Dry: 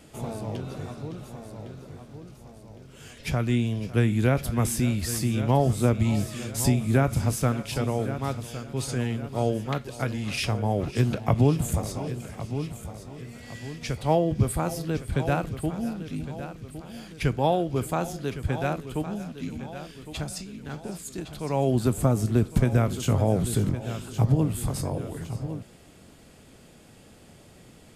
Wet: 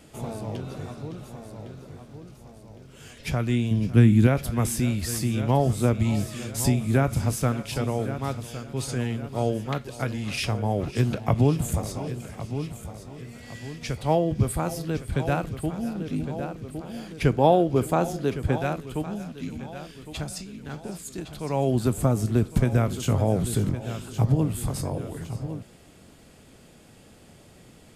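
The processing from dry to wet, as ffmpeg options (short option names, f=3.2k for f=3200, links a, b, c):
-filter_complex "[0:a]asettb=1/sr,asplit=3[a][b][c];[a]atrim=end=3.714[d];[b]atrim=start=3.71:end=4.27,asetpts=PTS-STARTPTS,afade=t=in:d=0.004:c=qsin,afade=t=out:st=0.556:d=0.004:c=qsin,lowshelf=f=360:t=q:w=1.5:g=6[e];[c]atrim=start=4.266[f];[d][e]acrossfade=d=0.004:c1=hsin:c2=qsin[g];[g][f]acrossfade=d=0.004:c1=qsin:c2=hsin,asettb=1/sr,asplit=3[h][i][j];[h]atrim=end=15.954[k];[i]atrim=start=15.95:end=18.58,asetpts=PTS-STARTPTS,afade=t=in:d=0.004:c=qsin,afade=t=out:st=2.626:d=0.004:c=qsin,equalizer=f=400:t=o:w=2.9:g=6[l];[j]atrim=start=18.576[m];[k][l]acrossfade=d=0.004:c1=hsin:c2=qsin[n];[n][m]acrossfade=d=0.004:c1=qsin:c2=hsin"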